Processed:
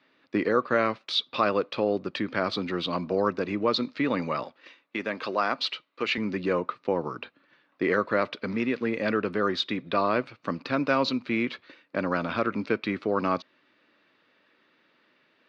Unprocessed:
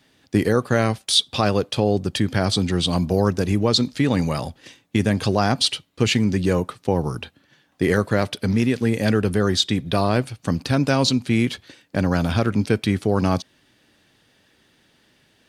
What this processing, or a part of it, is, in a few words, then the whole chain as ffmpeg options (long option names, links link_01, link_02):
phone earpiece: -filter_complex "[0:a]highpass=360,equalizer=frequency=420:width_type=q:width=4:gain=-4,equalizer=frequency=770:width_type=q:width=4:gain=-9,equalizer=frequency=1200:width_type=q:width=4:gain=4,equalizer=frequency=1700:width_type=q:width=4:gain=-4,equalizer=frequency=3200:width_type=q:width=4:gain=-9,lowpass=frequency=3500:width=0.5412,lowpass=frequency=3500:width=1.3066,asettb=1/sr,asplit=3[link_01][link_02][link_03];[link_01]atrim=end=4.434[link_04];[link_02]atrim=start=4.43:end=6.18,asetpts=PTS-STARTPTS,afade=type=in:duration=0.004:curve=qsin,afade=type=out:start_time=1.746:duration=0.004:curve=qsin,highpass=frequency=480:poles=1[link_05];[link_03]atrim=start=6.176[link_06];[link_04][link_05]acrossfade=duration=0.004:curve1=hsin:curve2=qsin[link_07];[link_07][link_06]acrossfade=duration=0.004:curve1=qsin:curve2=hsin"